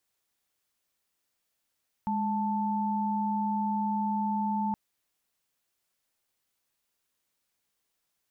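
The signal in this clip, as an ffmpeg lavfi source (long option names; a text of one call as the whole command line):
ffmpeg -f lavfi -i "aevalsrc='0.0355*(sin(2*PI*207.65*t)+sin(2*PI*880*t))':duration=2.67:sample_rate=44100" out.wav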